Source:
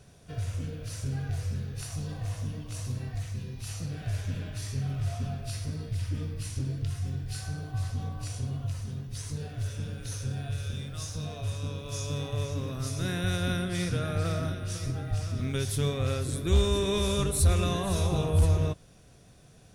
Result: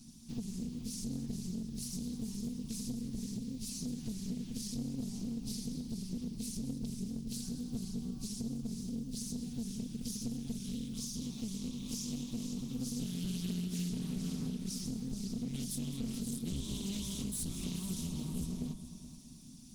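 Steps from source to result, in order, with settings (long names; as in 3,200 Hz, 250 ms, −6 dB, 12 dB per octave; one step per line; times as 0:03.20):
lower of the sound and its delayed copy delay 5.3 ms
drawn EQ curve 170 Hz 0 dB, 250 Hz +13 dB, 460 Hz −28 dB, 1,000 Hz −13 dB, 1,500 Hz −21 dB, 5,000 Hz +5 dB
in parallel at −8.5 dB: hard clipping −28 dBFS, distortion −10 dB
on the sum: mains-hum notches 50/100/150/200 Hz
downward compressor 4 to 1, threshold −36 dBFS, peak gain reduction 14 dB
notch filter 540 Hz, Q 14
on a send: echo machine with several playback heads 213 ms, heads first and second, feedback 45%, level −14 dB
on the sum: highs frequency-modulated by the lows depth 0.33 ms
level −1.5 dB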